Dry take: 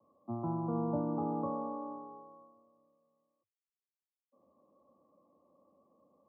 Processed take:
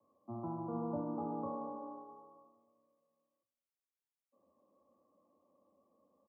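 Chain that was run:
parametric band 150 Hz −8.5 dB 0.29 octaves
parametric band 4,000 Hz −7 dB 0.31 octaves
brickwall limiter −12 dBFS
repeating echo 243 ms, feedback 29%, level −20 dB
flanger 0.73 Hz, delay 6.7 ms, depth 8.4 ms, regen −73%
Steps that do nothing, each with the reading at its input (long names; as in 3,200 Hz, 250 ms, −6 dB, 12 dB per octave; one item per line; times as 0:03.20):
parametric band 4,000 Hz: nothing at its input above 1,200 Hz
brickwall limiter −12 dBFS: peak of its input −22.5 dBFS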